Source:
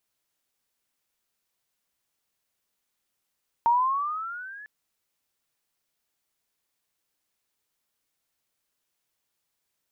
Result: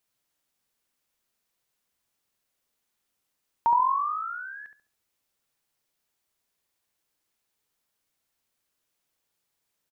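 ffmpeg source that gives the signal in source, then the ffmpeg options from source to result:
-f lavfi -i "aevalsrc='pow(10,(-16.5-24*t/1)/20)*sin(2*PI*919*1/(11*log(2)/12)*(exp(11*log(2)/12*t/1)-1))':duration=1:sample_rate=44100"
-filter_complex "[0:a]asplit=2[link_01][link_02];[link_02]adelay=69,lowpass=frequency=1000:poles=1,volume=-4dB,asplit=2[link_03][link_04];[link_04]adelay=69,lowpass=frequency=1000:poles=1,volume=0.45,asplit=2[link_05][link_06];[link_06]adelay=69,lowpass=frequency=1000:poles=1,volume=0.45,asplit=2[link_07][link_08];[link_08]adelay=69,lowpass=frequency=1000:poles=1,volume=0.45,asplit=2[link_09][link_10];[link_10]adelay=69,lowpass=frequency=1000:poles=1,volume=0.45,asplit=2[link_11][link_12];[link_12]adelay=69,lowpass=frequency=1000:poles=1,volume=0.45[link_13];[link_01][link_03][link_05][link_07][link_09][link_11][link_13]amix=inputs=7:normalize=0"

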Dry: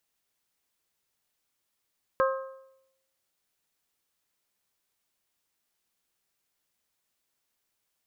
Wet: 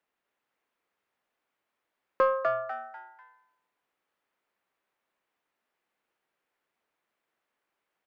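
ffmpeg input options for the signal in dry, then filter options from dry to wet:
-f lavfi -i "aevalsrc='0.0944*pow(10,-3*t/0.82)*sin(2*PI*532*t)+0.0631*pow(10,-3*t/0.666)*sin(2*PI*1064*t)+0.0422*pow(10,-3*t/0.631)*sin(2*PI*1276.8*t)+0.0282*pow(10,-3*t/0.59)*sin(2*PI*1596*t)':duration=1.55:sample_rate=44100"
-filter_complex "[0:a]acrossover=split=210 2500:gain=0.224 1 0.1[link_01][link_02][link_03];[link_01][link_02][link_03]amix=inputs=3:normalize=0,asplit=2[link_04][link_05];[link_05]asoftclip=type=tanh:threshold=-24.5dB,volume=-4dB[link_06];[link_04][link_06]amix=inputs=2:normalize=0,asplit=5[link_07][link_08][link_09][link_10][link_11];[link_08]adelay=247,afreqshift=120,volume=-4dB[link_12];[link_09]adelay=494,afreqshift=240,volume=-13.6dB[link_13];[link_10]adelay=741,afreqshift=360,volume=-23.3dB[link_14];[link_11]adelay=988,afreqshift=480,volume=-32.9dB[link_15];[link_07][link_12][link_13][link_14][link_15]amix=inputs=5:normalize=0"

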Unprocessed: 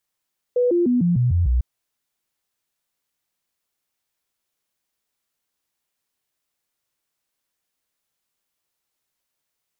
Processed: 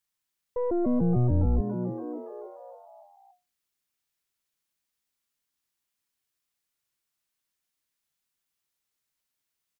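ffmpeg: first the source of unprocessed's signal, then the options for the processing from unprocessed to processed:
-f lavfi -i "aevalsrc='0.178*clip(min(mod(t,0.15),0.15-mod(t,0.15))/0.005,0,1)*sin(2*PI*492*pow(2,-floor(t/0.15)/2)*mod(t,0.15))':duration=1.05:sample_rate=44100"
-filter_complex "[0:a]equalizer=frequency=560:width=0.81:gain=-6,aeval=exprs='(tanh(10*val(0)+0.7)-tanh(0.7))/10':channel_layout=same,asplit=2[link_01][link_02];[link_02]asplit=6[link_03][link_04][link_05][link_06][link_07][link_08];[link_03]adelay=283,afreqshift=120,volume=-9dB[link_09];[link_04]adelay=566,afreqshift=240,volume=-14.2dB[link_10];[link_05]adelay=849,afreqshift=360,volume=-19.4dB[link_11];[link_06]adelay=1132,afreqshift=480,volume=-24.6dB[link_12];[link_07]adelay=1415,afreqshift=600,volume=-29.8dB[link_13];[link_08]adelay=1698,afreqshift=720,volume=-35dB[link_14];[link_09][link_10][link_11][link_12][link_13][link_14]amix=inputs=6:normalize=0[link_15];[link_01][link_15]amix=inputs=2:normalize=0"

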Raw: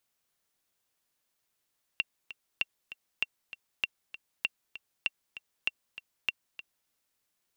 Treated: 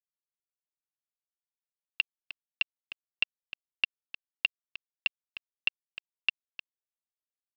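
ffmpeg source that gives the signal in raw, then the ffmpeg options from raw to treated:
-f lavfi -i "aevalsrc='pow(10,(-14-14.5*gte(mod(t,2*60/196),60/196))/20)*sin(2*PI*2740*mod(t,60/196))*exp(-6.91*mod(t,60/196)/0.03)':duration=4.89:sample_rate=44100"
-af "aemphasis=mode=production:type=75fm,aresample=11025,aeval=exprs='val(0)*gte(abs(val(0)),0.02)':channel_layout=same,aresample=44100"

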